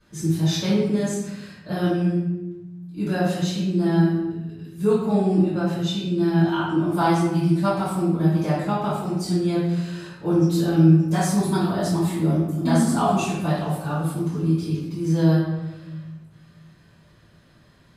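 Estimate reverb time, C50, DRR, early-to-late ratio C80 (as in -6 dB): 1.0 s, 0.0 dB, -15.0 dB, 3.5 dB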